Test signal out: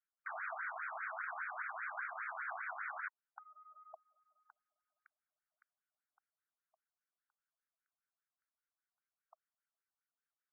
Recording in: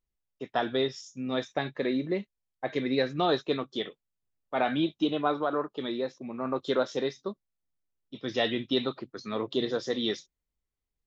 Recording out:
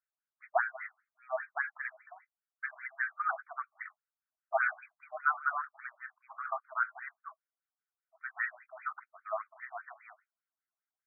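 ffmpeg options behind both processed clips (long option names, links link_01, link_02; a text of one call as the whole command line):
ffmpeg -i in.wav -af "acontrast=46,highpass=500,equalizer=frequency=640:width_type=q:width=4:gain=7,equalizer=frequency=930:width_type=q:width=4:gain=-4,equalizer=frequency=1500:width_type=q:width=4:gain=9,lowpass=frequency=2300:width=0.5412,lowpass=frequency=2300:width=1.3066,afftfilt=real='re*between(b*sr/1024,850*pow(1800/850,0.5+0.5*sin(2*PI*5*pts/sr))/1.41,850*pow(1800/850,0.5+0.5*sin(2*PI*5*pts/sr))*1.41)':imag='im*between(b*sr/1024,850*pow(1800/850,0.5+0.5*sin(2*PI*5*pts/sr))/1.41,850*pow(1800/850,0.5+0.5*sin(2*PI*5*pts/sr))*1.41)':win_size=1024:overlap=0.75,volume=-4.5dB" out.wav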